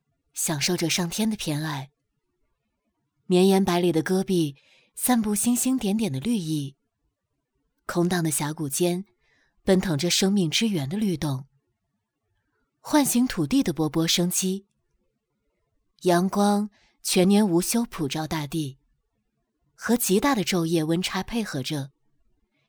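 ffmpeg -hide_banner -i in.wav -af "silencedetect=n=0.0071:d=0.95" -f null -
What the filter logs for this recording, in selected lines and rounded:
silence_start: 1.85
silence_end: 3.30 | silence_duration: 1.44
silence_start: 6.70
silence_end: 7.89 | silence_duration: 1.19
silence_start: 11.42
silence_end: 12.85 | silence_duration: 1.43
silence_start: 14.60
silence_end: 15.99 | silence_duration: 1.39
silence_start: 18.73
silence_end: 19.79 | silence_duration: 1.07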